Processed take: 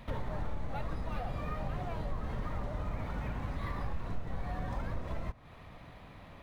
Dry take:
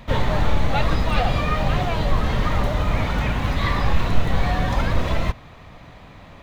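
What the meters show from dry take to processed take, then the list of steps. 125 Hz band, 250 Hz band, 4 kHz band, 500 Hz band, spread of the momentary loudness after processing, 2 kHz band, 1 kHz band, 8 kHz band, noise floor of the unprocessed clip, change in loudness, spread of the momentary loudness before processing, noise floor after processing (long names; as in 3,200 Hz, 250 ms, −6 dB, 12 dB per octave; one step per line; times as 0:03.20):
−16.0 dB, −16.0 dB, −24.5 dB, −16.5 dB, 14 LU, −20.0 dB, −17.0 dB, can't be measured, −44 dBFS, −16.5 dB, 2 LU, −53 dBFS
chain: dynamic equaliser 3,300 Hz, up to −8 dB, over −44 dBFS, Q 0.92
downward compressor 2.5 to 1, threshold −28 dBFS, peak gain reduction 12.5 dB
linearly interpolated sample-rate reduction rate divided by 3×
level −8 dB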